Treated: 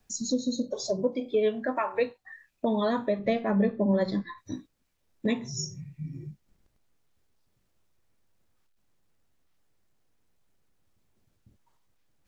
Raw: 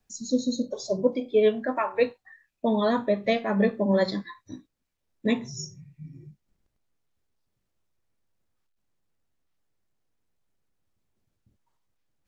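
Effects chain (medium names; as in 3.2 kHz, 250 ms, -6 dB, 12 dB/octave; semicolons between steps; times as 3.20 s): 3.19–4.38 s: tilt EQ -2 dB/octave; compression 2:1, threshold -37 dBFS, peak gain reduction 12.5 dB; trim +6 dB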